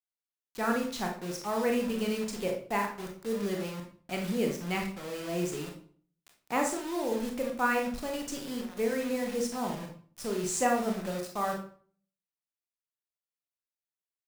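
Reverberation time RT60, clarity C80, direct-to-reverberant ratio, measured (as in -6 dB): 0.45 s, 11.5 dB, 1.0 dB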